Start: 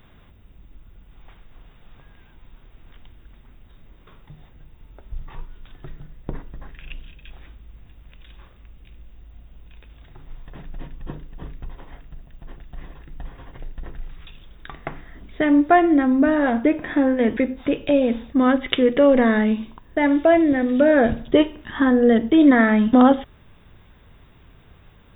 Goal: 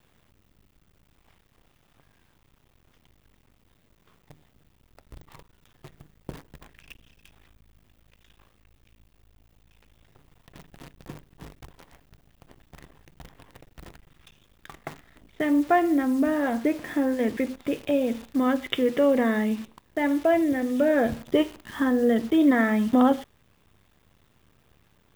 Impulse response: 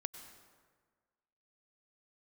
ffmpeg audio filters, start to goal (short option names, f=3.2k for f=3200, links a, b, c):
-af "highpass=66,bandreject=f=1.5k:w=26,acrusher=bits=7:dc=4:mix=0:aa=0.000001,volume=-6dB"